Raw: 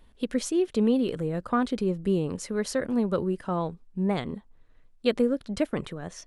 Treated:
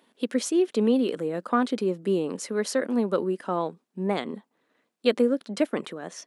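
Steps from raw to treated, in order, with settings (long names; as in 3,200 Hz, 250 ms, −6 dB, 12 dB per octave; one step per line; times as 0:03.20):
high-pass filter 220 Hz 24 dB per octave
level +2.5 dB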